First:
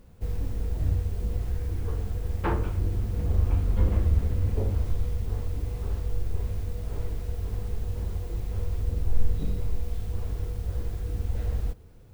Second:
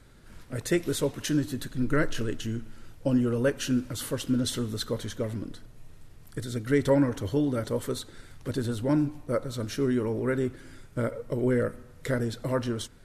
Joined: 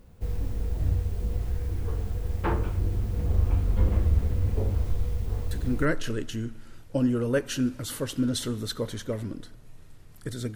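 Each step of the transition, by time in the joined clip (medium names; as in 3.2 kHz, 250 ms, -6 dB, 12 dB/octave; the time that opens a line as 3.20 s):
first
5.68 s: go over to second from 1.79 s, crossfade 0.34 s logarithmic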